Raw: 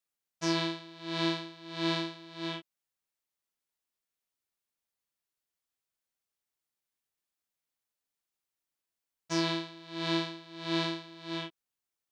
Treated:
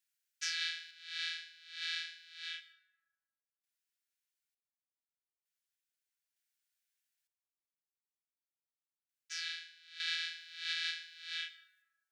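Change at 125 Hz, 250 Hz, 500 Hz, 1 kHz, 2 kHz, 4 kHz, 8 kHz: below −40 dB, below −40 dB, below −40 dB, −22.0 dB, −0.5 dB, −2.0 dB, −1.0 dB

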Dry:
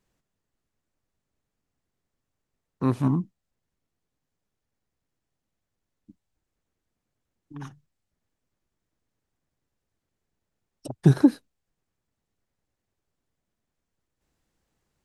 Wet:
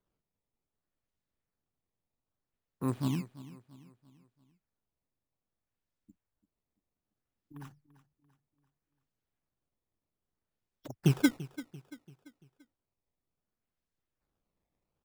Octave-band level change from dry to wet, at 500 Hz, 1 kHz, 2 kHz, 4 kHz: −8.5, −8.5, +2.5, +4.5 decibels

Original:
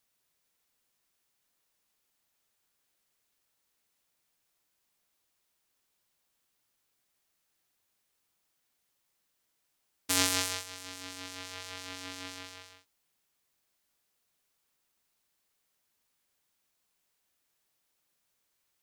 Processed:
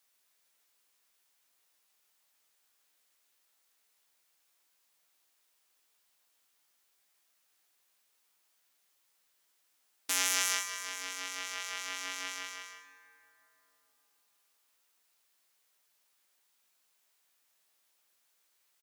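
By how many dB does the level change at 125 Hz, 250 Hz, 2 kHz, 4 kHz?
below −20 dB, −13.0 dB, +3.0 dB, −1.0 dB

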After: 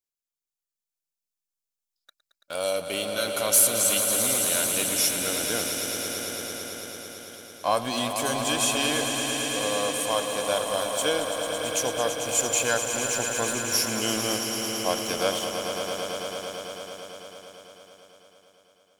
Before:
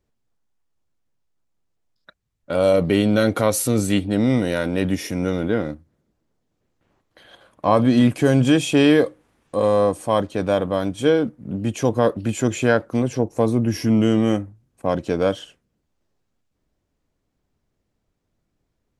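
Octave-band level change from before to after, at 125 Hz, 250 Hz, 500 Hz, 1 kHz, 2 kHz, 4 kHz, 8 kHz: −17.0, −14.5, −7.5, −2.5, −0.5, +5.5, +10.5 decibels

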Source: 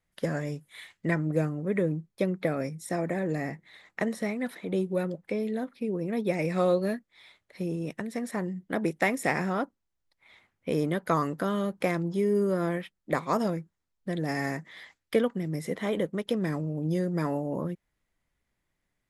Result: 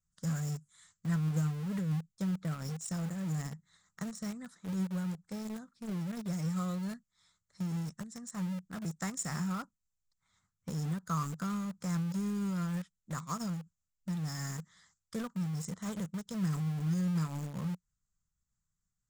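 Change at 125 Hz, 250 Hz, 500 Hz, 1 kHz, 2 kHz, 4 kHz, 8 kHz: −1.0, −5.0, −20.0, −10.0, −13.5, −5.0, +3.0 decibels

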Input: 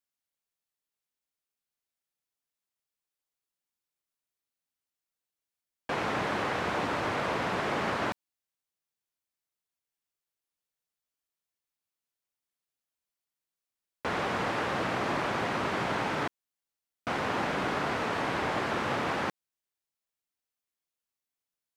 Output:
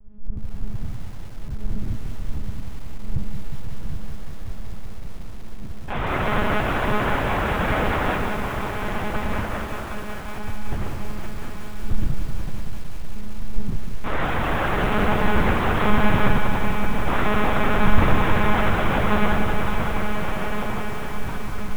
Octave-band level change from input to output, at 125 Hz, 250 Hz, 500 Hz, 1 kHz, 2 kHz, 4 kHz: +16.5, +12.0, +8.0, +8.0, +8.5, +6.0 decibels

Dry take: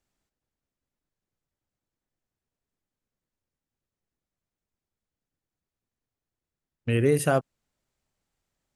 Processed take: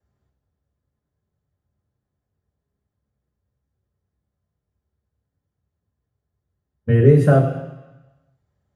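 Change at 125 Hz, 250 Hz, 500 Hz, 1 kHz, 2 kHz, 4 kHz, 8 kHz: +13.5 dB, +9.0 dB, +8.0 dB, +4.0 dB, +2.5 dB, can't be measured, below −10 dB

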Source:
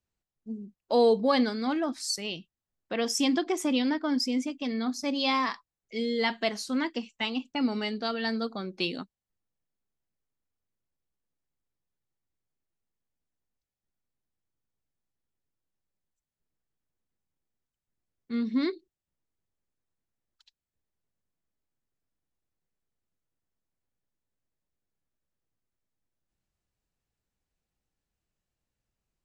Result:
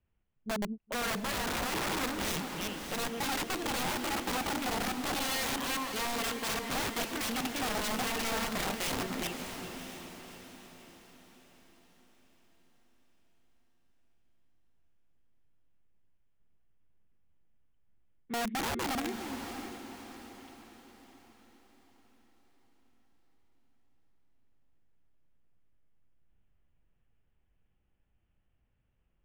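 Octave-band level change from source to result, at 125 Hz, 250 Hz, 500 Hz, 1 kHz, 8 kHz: +3.5, −8.0, −8.0, −0.5, +3.0 decibels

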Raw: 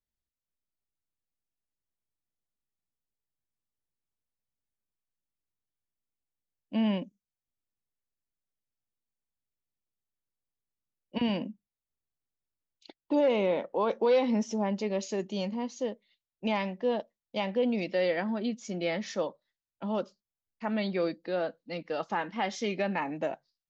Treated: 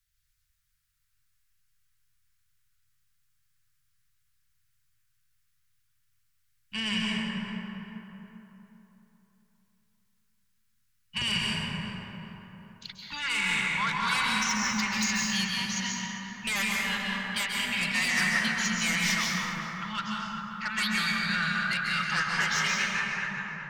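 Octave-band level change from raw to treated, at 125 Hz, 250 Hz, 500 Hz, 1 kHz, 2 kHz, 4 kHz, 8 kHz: +3.5 dB, −2.5 dB, −18.5 dB, +3.0 dB, +14.0 dB, +13.0 dB, can't be measured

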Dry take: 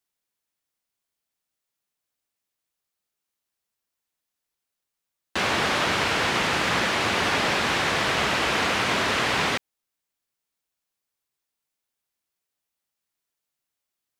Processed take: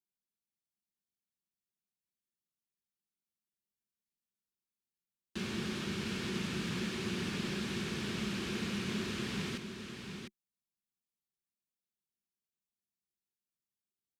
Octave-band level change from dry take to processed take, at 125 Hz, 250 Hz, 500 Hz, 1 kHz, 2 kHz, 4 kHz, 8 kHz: −5.5, −4.5, −14.5, −23.0, −18.5, −15.0, −14.0 decibels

